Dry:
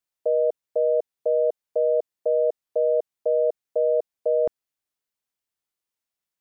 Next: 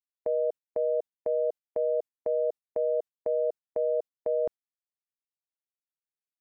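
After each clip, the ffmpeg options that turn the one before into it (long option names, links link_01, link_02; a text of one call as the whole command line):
ffmpeg -i in.wav -af "agate=range=-26dB:threshold=-31dB:ratio=16:detection=peak,volume=-6dB" out.wav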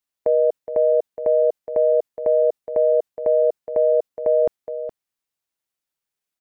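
ffmpeg -i in.wav -af "aecho=1:1:418:0.266,acontrast=23,volume=5dB" out.wav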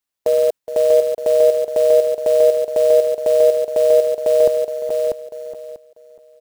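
ffmpeg -i in.wav -af "acrusher=bits=5:mode=log:mix=0:aa=0.000001,aecho=1:1:642|1284|1926:0.596|0.113|0.0215,volume=2dB" out.wav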